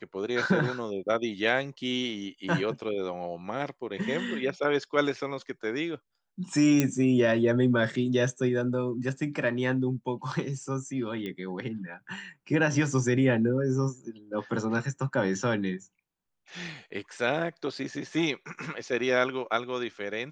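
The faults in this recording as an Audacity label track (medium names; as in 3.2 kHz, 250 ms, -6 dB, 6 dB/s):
6.800000	6.800000	pop -9 dBFS
11.260000	11.260000	pop -24 dBFS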